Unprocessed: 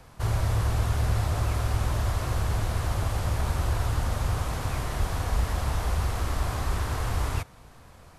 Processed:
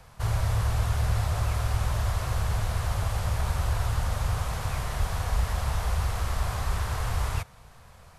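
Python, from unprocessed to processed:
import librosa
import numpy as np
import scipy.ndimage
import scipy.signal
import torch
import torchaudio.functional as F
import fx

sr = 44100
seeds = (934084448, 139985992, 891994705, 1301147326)

y = fx.peak_eq(x, sr, hz=300.0, db=-12.0, octaves=0.72)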